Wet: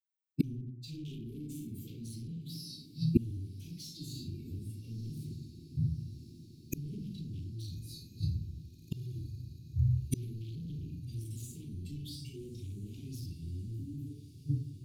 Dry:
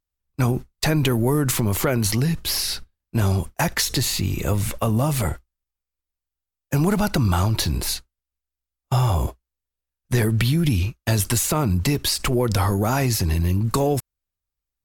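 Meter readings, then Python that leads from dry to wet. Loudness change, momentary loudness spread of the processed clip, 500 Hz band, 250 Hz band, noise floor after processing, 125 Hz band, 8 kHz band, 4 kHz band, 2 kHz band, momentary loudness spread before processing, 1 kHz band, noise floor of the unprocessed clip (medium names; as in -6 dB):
-17.5 dB, 12 LU, -25.5 dB, -15.0 dB, -54 dBFS, -14.5 dB, -26.0 dB, -23.0 dB, under -30 dB, 5 LU, under -40 dB, under -85 dBFS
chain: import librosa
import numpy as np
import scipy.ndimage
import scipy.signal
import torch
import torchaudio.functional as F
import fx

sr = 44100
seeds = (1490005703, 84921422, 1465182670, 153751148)

p1 = fx.bin_expand(x, sr, power=2.0)
p2 = fx.room_shoebox(p1, sr, seeds[0], volume_m3=86.0, walls='mixed', distance_m=4.4)
p3 = fx.spec_erase(p2, sr, start_s=13.74, length_s=0.33, low_hz=330.0, high_hz=11000.0)
p4 = scipy.signal.sosfilt(scipy.signal.butter(4, 96.0, 'highpass', fs=sr, output='sos'), p3)
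p5 = np.clip(p4, -10.0 ** (-10.5 / 20.0), 10.0 ** (-10.5 / 20.0))
p6 = fx.rider(p5, sr, range_db=4, speed_s=0.5)
p7 = fx.gate_flip(p6, sr, shuts_db=-23.0, range_db=-39)
p8 = scipy.signal.sosfilt(scipy.signal.cheby2(4, 40, [560.0, 1900.0], 'bandstop', fs=sr, output='sos'), p7)
p9 = fx.high_shelf(p8, sr, hz=6800.0, db=-7.5)
p10 = p9 + fx.echo_diffused(p9, sr, ms=1237, feedback_pct=68, wet_db=-15, dry=0)
y = p10 * librosa.db_to_amplitude(11.5)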